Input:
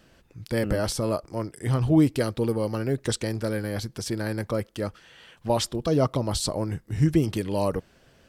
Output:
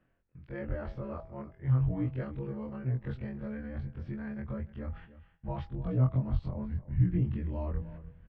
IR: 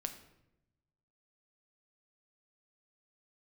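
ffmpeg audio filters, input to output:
-filter_complex "[0:a]afftfilt=real='re':imag='-im':win_size=2048:overlap=0.75,agate=range=-20dB:threshold=-52dB:ratio=16:detection=peak,lowpass=frequency=2300:width=0.5412,lowpass=frequency=2300:width=1.3066,asubboost=boost=9.5:cutoff=130,bandreject=frequency=162.8:width_type=h:width=4,bandreject=frequency=325.6:width_type=h:width=4,bandreject=frequency=488.4:width_type=h:width=4,bandreject=frequency=651.2:width_type=h:width=4,bandreject=frequency=814:width_type=h:width=4,bandreject=frequency=976.8:width_type=h:width=4,bandreject=frequency=1139.6:width_type=h:width=4,areverse,acompressor=mode=upward:threshold=-27dB:ratio=2.5,areverse,asplit=2[link_01][link_02];[link_02]adelay=303.2,volume=-16dB,highshelf=frequency=4000:gain=-6.82[link_03];[link_01][link_03]amix=inputs=2:normalize=0,volume=-8.5dB"

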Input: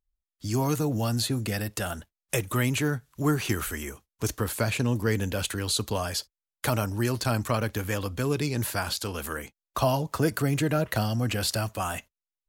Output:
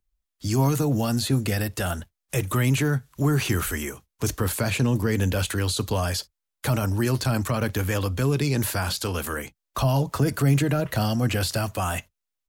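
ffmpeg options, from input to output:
ffmpeg -i in.wav -filter_complex "[0:a]acrossover=split=200[link_01][link_02];[link_01]asplit=2[link_03][link_04];[link_04]adelay=22,volume=-4.5dB[link_05];[link_03][link_05]amix=inputs=2:normalize=0[link_06];[link_02]alimiter=limit=-23.5dB:level=0:latency=1:release=11[link_07];[link_06][link_07]amix=inputs=2:normalize=0,volume=5dB" out.wav

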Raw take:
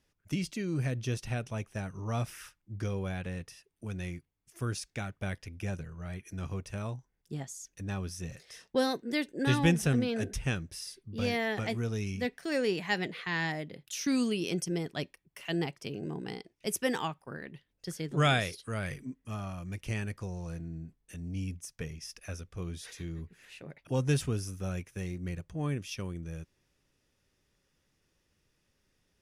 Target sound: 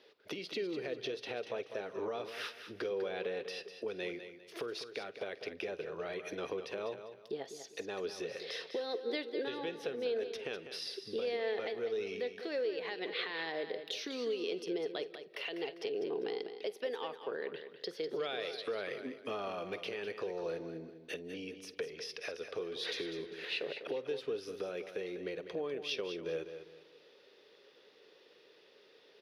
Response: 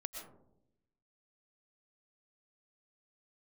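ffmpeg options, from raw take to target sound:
-filter_complex "[0:a]acompressor=threshold=-43dB:ratio=12,highpass=frequency=440:width_type=q:width=4.9,alimiter=level_in=15dB:limit=-24dB:level=0:latency=1:release=294,volume=-15dB,highshelf=frequency=5600:width_type=q:width=3:gain=-12.5,aecho=1:1:199|398|597:0.316|0.098|0.0304,asplit=2[link_01][link_02];[1:a]atrim=start_sample=2205,adelay=49[link_03];[link_02][link_03]afir=irnorm=-1:irlink=0,volume=-16.5dB[link_04];[link_01][link_04]amix=inputs=2:normalize=0,volume=10dB"

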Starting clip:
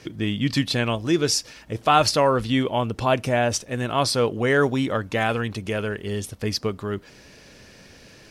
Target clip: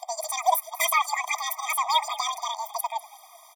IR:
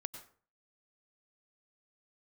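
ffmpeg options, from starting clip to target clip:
-filter_complex "[0:a]asplit=2[link_01][link_02];[link_02]asplit=4[link_03][link_04][link_05][link_06];[link_03]adelay=455,afreqshift=-43,volume=-18.5dB[link_07];[link_04]adelay=910,afreqshift=-86,volume=-24.9dB[link_08];[link_05]adelay=1365,afreqshift=-129,volume=-31.3dB[link_09];[link_06]adelay=1820,afreqshift=-172,volume=-37.6dB[link_10];[link_07][link_08][link_09][link_10]amix=inputs=4:normalize=0[link_11];[link_01][link_11]amix=inputs=2:normalize=0,aeval=exprs='(mod(2.37*val(0)+1,2)-1)/2.37':channel_layout=same,afreqshift=-23,asplit=2[link_12][link_13];[link_13]asoftclip=type=tanh:threshold=-16.5dB,volume=-3dB[link_14];[link_12][link_14]amix=inputs=2:normalize=0,flanger=delay=0.5:depth=6.6:regen=51:speed=1.2:shape=sinusoidal,asetrate=103194,aresample=44100,afftfilt=real='re*eq(mod(floor(b*sr/1024/630),2),1)':imag='im*eq(mod(floor(b*sr/1024/630),2),1)':win_size=1024:overlap=0.75"

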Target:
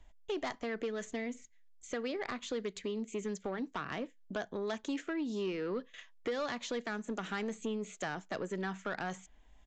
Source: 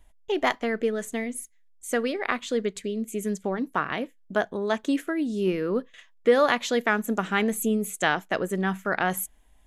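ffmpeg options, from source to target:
ffmpeg -i in.wav -filter_complex "[0:a]acrossover=split=260|1900|4900[link_01][link_02][link_03][link_04];[link_01]acompressor=threshold=-43dB:ratio=4[link_05];[link_02]acompressor=threshold=-33dB:ratio=4[link_06];[link_03]acompressor=threshold=-44dB:ratio=4[link_07];[link_04]acompressor=threshold=-46dB:ratio=4[link_08];[link_05][link_06][link_07][link_08]amix=inputs=4:normalize=0,aresample=16000,asoftclip=type=tanh:threshold=-27dB,aresample=44100,volume=-1.5dB" out.wav

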